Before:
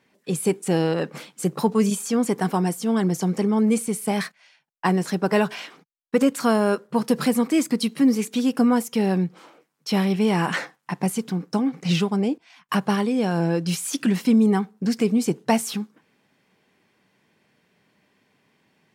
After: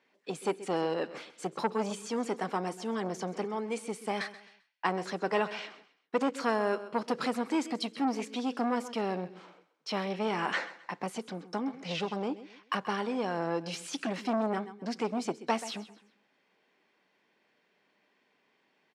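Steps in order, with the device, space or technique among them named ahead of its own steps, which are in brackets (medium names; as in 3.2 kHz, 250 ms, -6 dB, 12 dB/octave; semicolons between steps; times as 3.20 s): 3.44–3.87 s: peaking EQ 100 Hz -12.5 dB 2.4 oct; feedback delay 131 ms, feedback 32%, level -16 dB; public-address speaker with an overloaded transformer (transformer saturation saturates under 760 Hz; band-pass 330–5100 Hz); trim -5 dB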